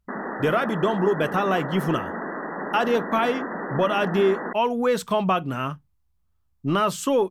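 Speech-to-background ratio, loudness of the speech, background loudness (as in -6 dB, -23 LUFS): 7.5 dB, -24.0 LUFS, -31.5 LUFS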